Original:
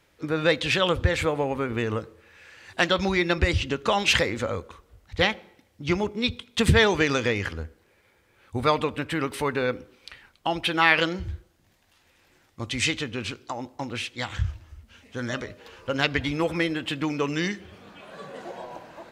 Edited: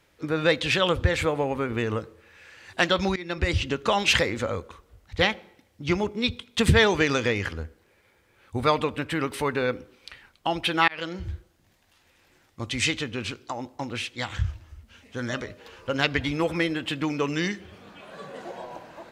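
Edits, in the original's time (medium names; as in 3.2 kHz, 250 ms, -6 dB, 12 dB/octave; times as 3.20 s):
3.16–3.57 s: fade in, from -20.5 dB
10.88–11.29 s: fade in linear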